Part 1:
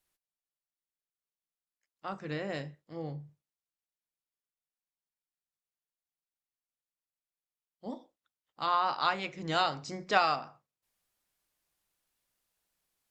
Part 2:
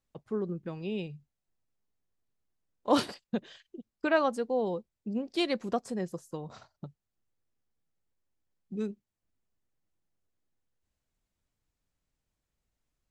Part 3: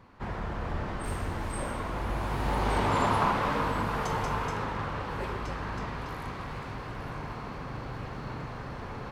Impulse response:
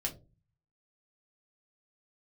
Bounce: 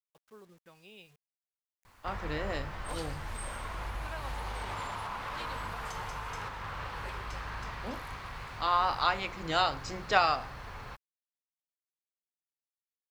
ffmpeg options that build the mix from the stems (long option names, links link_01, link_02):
-filter_complex "[0:a]lowshelf=frequency=180:gain=-10,volume=1.5dB[link_01];[1:a]lowshelf=frequency=280:gain=-7.5,volume=-7dB[link_02];[2:a]adelay=1850,volume=0.5dB[link_03];[link_02][link_03]amix=inputs=2:normalize=0,equalizer=frequency=260:width_type=o:width=2.7:gain=-14.5,alimiter=level_in=4dB:limit=-24dB:level=0:latency=1:release=336,volume=-4dB,volume=0dB[link_04];[link_01][link_04]amix=inputs=2:normalize=0,acrusher=bits=10:mix=0:aa=0.000001"